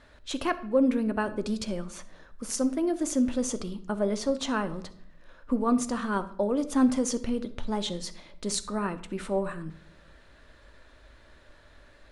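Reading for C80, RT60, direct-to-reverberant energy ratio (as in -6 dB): 18.0 dB, 0.60 s, 10.5 dB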